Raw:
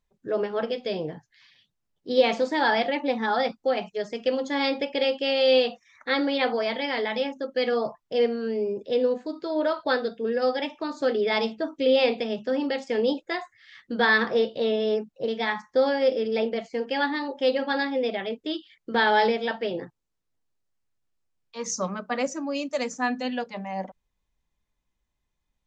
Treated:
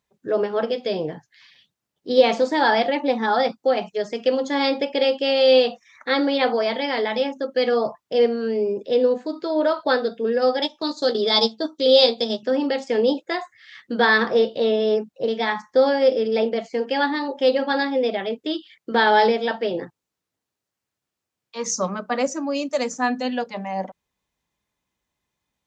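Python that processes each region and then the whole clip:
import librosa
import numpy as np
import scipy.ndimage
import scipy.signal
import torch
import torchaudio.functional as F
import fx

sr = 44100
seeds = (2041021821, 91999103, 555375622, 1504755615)

y = fx.chain(x, sr, fx.high_shelf_res(hz=3100.0, db=7.0, q=3.0),
    fx.transient(attack_db=-3, sustain_db=-10),
    fx.doubler(ms=13.0, db=-8.0), at=(10.62, 12.43))
y = fx.dynamic_eq(y, sr, hz=2300.0, q=1.1, threshold_db=-41.0, ratio=4.0, max_db=-4)
y = scipy.signal.sosfilt(scipy.signal.butter(2, 77.0, 'highpass', fs=sr, output='sos'), y)
y = fx.low_shelf(y, sr, hz=140.0, db=-6.0)
y = F.gain(torch.from_numpy(y), 5.5).numpy()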